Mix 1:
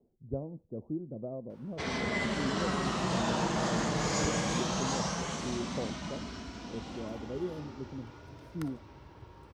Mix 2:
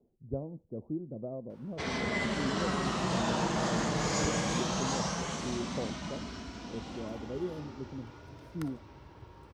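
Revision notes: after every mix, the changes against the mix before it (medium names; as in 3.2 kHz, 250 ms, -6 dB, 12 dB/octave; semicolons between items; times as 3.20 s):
no change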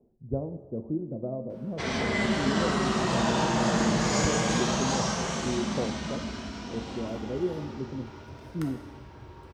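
speech +4.0 dB; reverb: on, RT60 1.4 s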